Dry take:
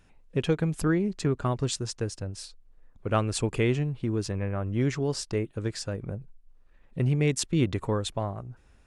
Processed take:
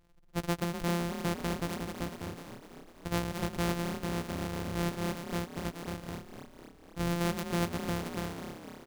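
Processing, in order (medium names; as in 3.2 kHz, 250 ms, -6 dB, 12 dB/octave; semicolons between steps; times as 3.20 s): sorted samples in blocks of 256 samples; frequency-shifting echo 250 ms, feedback 62%, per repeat +34 Hz, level -9.5 dB; trim -7 dB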